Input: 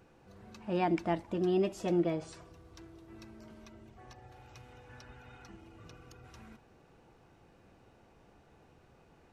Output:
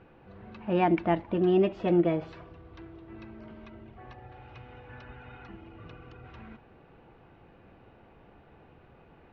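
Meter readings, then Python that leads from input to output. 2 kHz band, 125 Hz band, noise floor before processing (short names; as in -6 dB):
+5.5 dB, +6.0 dB, -63 dBFS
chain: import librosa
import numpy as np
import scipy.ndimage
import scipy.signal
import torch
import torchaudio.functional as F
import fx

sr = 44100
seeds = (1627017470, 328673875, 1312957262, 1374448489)

y = scipy.signal.sosfilt(scipy.signal.butter(4, 3200.0, 'lowpass', fs=sr, output='sos'), x)
y = fx.end_taper(y, sr, db_per_s=420.0)
y = F.gain(torch.from_numpy(y), 6.0).numpy()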